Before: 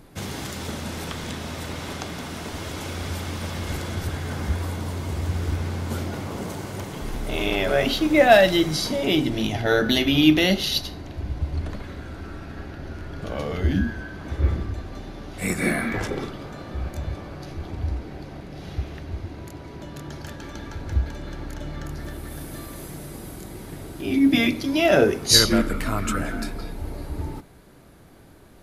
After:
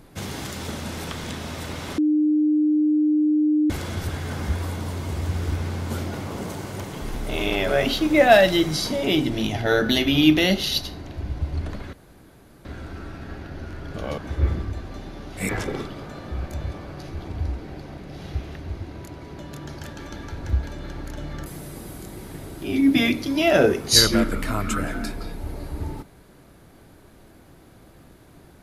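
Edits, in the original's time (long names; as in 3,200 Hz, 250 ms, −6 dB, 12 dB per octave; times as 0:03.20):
0:01.98–0:03.70: beep over 303 Hz −16 dBFS
0:11.93: splice in room tone 0.72 s
0:13.46–0:14.19: remove
0:15.50–0:15.92: remove
0:21.89–0:22.84: remove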